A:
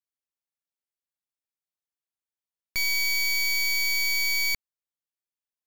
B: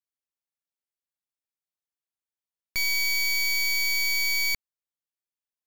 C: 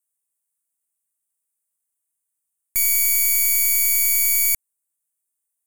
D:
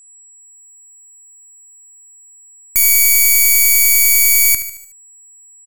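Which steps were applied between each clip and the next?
no audible change
resonant high shelf 6.4 kHz +13.5 dB, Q 3
level rider gain up to 11 dB; whistle 7.8 kHz -41 dBFS; on a send: feedback delay 74 ms, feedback 50%, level -12.5 dB; on the sum: trim -1 dB

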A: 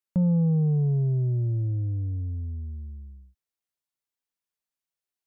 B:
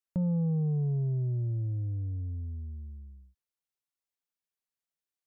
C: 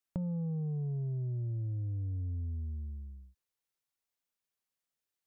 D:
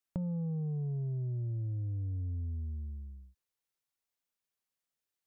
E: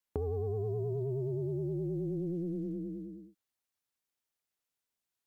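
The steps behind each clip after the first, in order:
dynamic bell 250 Hz, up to -4 dB, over -36 dBFS, Q 1.3; trim -4.5 dB
compression, threshold -36 dBFS, peak gain reduction 9 dB; trim +2 dB
no audible change
short-mantissa float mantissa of 6-bit; ring modulator 260 Hz; vibrato 9.5 Hz 90 cents; trim +3.5 dB

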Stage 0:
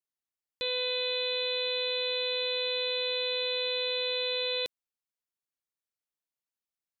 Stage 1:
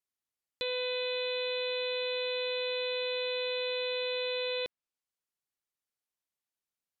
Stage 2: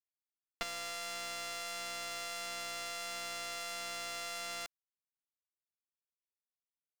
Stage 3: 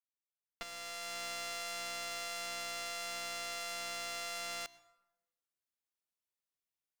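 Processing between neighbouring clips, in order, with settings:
low-pass that closes with the level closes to 2.9 kHz, closed at -32 dBFS
sorted samples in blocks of 64 samples; power-law waveshaper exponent 3; slew-rate limiter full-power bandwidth 97 Hz; trim +4.5 dB
fade-in on the opening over 1.26 s; plate-style reverb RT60 1 s, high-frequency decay 0.6×, pre-delay 80 ms, DRR 19 dB

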